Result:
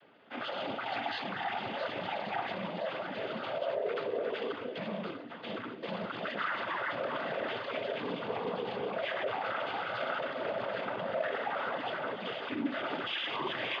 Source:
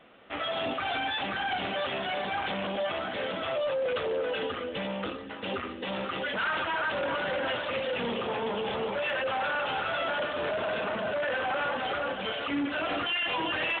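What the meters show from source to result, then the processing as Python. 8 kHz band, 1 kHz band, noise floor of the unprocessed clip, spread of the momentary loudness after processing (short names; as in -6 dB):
n/a, -4.5 dB, -39 dBFS, 5 LU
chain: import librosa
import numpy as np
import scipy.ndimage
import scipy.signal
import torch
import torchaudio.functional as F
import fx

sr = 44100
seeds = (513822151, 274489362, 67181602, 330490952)

y = fx.high_shelf(x, sr, hz=3400.0, db=-7.0)
y = fx.noise_vocoder(y, sr, seeds[0], bands=16)
y = F.gain(torch.from_numpy(y), -3.5).numpy()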